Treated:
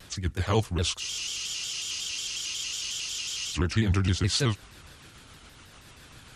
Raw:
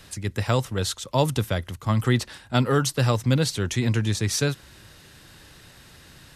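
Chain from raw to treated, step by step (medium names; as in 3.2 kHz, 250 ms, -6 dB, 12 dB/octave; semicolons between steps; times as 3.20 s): sawtooth pitch modulation -5.5 st, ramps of 157 ms; spectral freeze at 1.03 s, 2.49 s; vibrato with a chosen wave square 5.5 Hz, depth 100 cents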